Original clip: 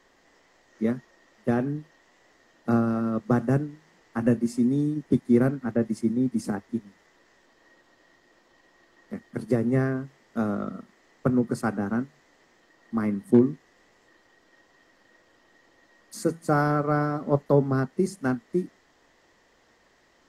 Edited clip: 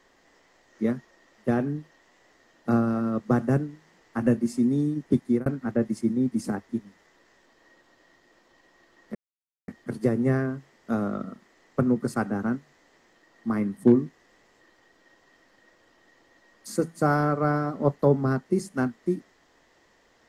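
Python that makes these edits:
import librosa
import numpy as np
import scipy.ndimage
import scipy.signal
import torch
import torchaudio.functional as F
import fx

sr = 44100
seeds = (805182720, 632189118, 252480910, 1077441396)

y = fx.edit(x, sr, fx.fade_out_span(start_s=5.19, length_s=0.27, curve='qsin'),
    fx.insert_silence(at_s=9.15, length_s=0.53), tone=tone)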